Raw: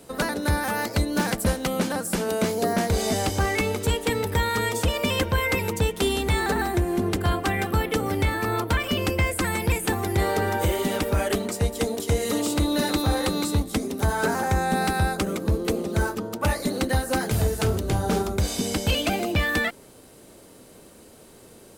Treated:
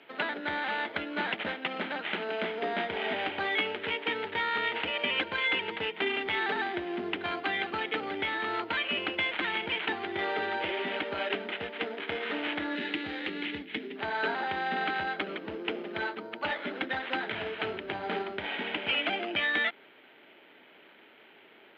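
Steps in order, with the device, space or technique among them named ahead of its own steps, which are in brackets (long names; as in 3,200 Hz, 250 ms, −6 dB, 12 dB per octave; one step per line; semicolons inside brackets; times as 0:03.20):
toy sound module (linearly interpolated sample-rate reduction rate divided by 8×; switching amplifier with a slow clock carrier 13,000 Hz; loudspeaker in its box 510–4,300 Hz, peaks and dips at 510 Hz −10 dB, 740 Hz −4 dB, 1,100 Hz −9 dB, 2,200 Hz +3 dB, 3,100 Hz +6 dB)
0:12.75–0:13.96: flat-topped bell 940 Hz −10 dB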